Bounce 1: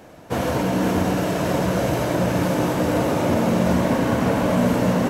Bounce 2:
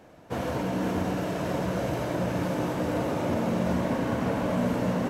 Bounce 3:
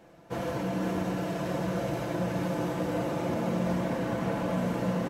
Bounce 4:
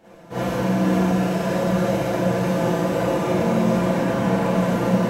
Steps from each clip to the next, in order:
high shelf 5700 Hz -5.5 dB; gain -7.5 dB
comb 5.9 ms, depth 46%; gain -3.5 dB
Schroeder reverb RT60 0.56 s, combs from 32 ms, DRR -9 dB

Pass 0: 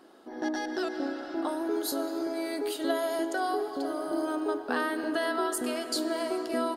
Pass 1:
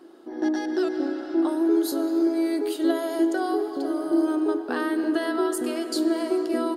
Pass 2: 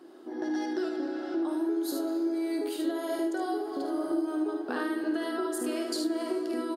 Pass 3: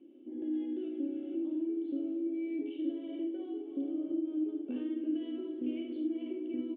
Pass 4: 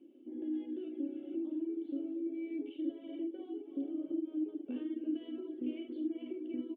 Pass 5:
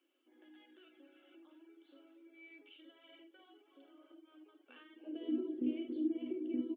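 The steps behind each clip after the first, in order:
bell 340 Hz +12.5 dB 0.38 oct
HPF 68 Hz; compressor, threshold -26 dBFS, peak gain reduction 9 dB; on a send: early reflections 52 ms -6.5 dB, 75 ms -6 dB; on the sum: gain -2.5 dB
vocal tract filter i; small resonant body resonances 540/2700 Hz, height 15 dB, ringing for 70 ms; gain +2 dB
reverb removal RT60 0.59 s; gain -1.5 dB
high-pass sweep 1300 Hz -> 130 Hz, 4.91–5.54

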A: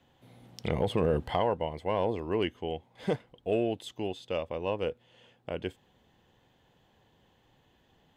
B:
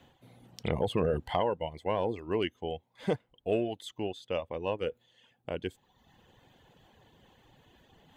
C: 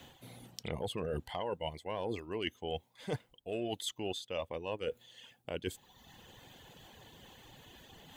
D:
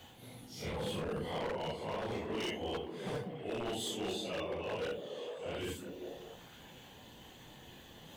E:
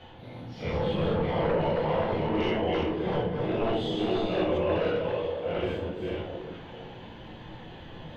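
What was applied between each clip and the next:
reverse; upward compressor, threshold -50 dBFS; reverse; notch 5200 Hz, Q 15; reverb removal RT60 0.85 s
high shelf 3200 Hz +11 dB; reverse; compressor 12:1, threshold -37 dBFS, peak gain reduction 15.5 dB; reverse; gain +3.5 dB
phase scrambler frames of 0.2 s; wavefolder -33.5 dBFS; delay with a stepping band-pass 0.196 s, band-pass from 210 Hz, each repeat 0.7 oct, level -1 dB; gain +1 dB
reverse delay 0.327 s, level -3 dB; air absorption 310 m; shoebox room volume 110 m³, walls mixed, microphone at 0.73 m; gain +7 dB

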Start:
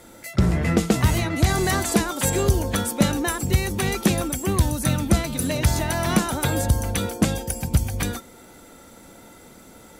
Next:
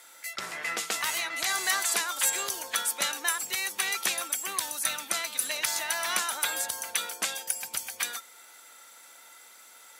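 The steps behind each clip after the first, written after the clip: HPF 1300 Hz 12 dB/oct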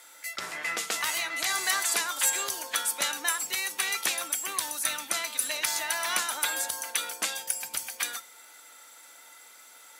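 notches 50/100/150/200 Hz; FDN reverb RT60 0.38 s, high-frequency decay 1×, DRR 12.5 dB

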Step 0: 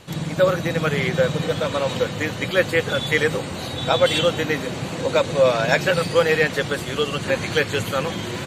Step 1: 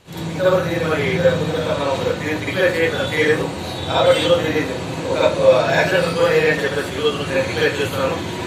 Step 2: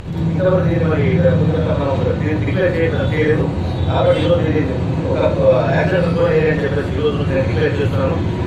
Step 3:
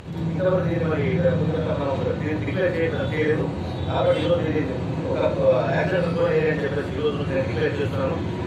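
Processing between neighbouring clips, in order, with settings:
reverb RT60 0.35 s, pre-delay 45 ms, DRR -8 dB; gain -6 dB
RIAA curve playback; in parallel at -3 dB: limiter -9 dBFS, peak gain reduction 11 dB; on the sum: upward compressor, threshold -15 dBFS; gain -5 dB
HPF 130 Hz 6 dB/oct; gain -5.5 dB

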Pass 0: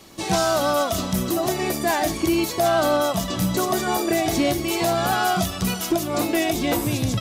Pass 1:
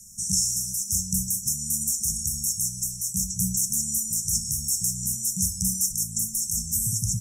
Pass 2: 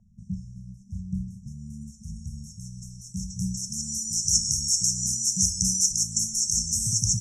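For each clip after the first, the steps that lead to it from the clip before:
FFT band-reject 230–5300 Hz; graphic EQ 125/250/8000 Hz -3/-9/+11 dB
low-pass sweep 670 Hz -> 5900 Hz, 0.51–4.33

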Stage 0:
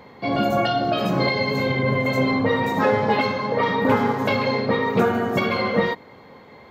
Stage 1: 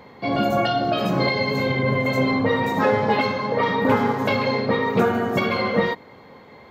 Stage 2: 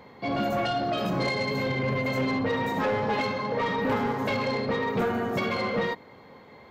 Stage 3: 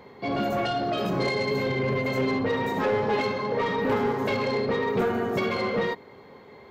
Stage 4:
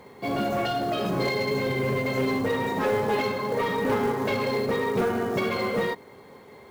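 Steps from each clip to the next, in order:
nothing audible
soft clip -16.5 dBFS, distortion -14 dB; gain -4 dB
bell 400 Hz +9 dB 0.22 oct
companded quantiser 6-bit

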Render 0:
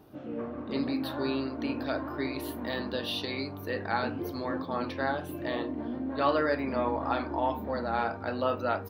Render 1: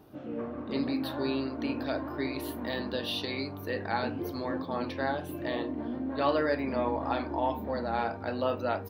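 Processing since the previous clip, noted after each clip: dynamic EQ 1300 Hz, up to -5 dB, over -46 dBFS, Q 3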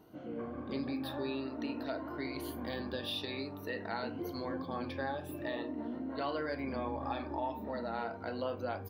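moving spectral ripple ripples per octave 1.9, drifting +0.49 Hz, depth 9 dB; compressor 2:1, threshold -31 dBFS, peak gain reduction 5 dB; gain -4.5 dB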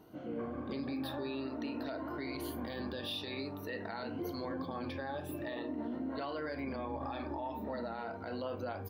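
limiter -32 dBFS, peak gain reduction 9 dB; gain +1.5 dB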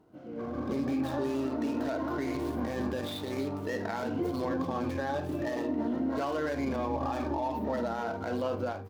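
median filter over 15 samples; AGC gain up to 12 dB; gain -4 dB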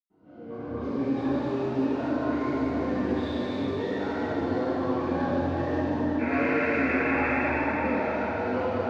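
painted sound noise, 6.08–7.27, 1300–2700 Hz -33 dBFS; air absorption 160 m; reverb RT60 4.6 s, pre-delay 99 ms

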